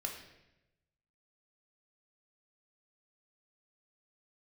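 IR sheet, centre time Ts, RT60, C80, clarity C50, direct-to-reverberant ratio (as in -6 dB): 29 ms, 0.95 s, 8.5 dB, 6.0 dB, 1.5 dB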